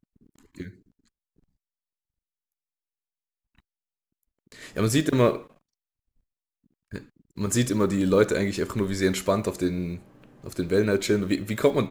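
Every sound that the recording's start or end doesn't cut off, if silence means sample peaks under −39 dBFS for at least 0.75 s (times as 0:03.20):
0:04.52–0:05.43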